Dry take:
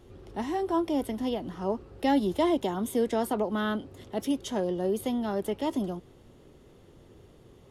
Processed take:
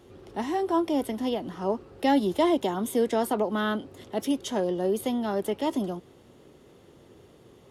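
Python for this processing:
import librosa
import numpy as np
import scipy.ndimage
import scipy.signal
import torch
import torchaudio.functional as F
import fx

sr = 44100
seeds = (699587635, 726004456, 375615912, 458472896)

y = fx.highpass(x, sr, hz=170.0, slope=6)
y = y * 10.0 ** (3.0 / 20.0)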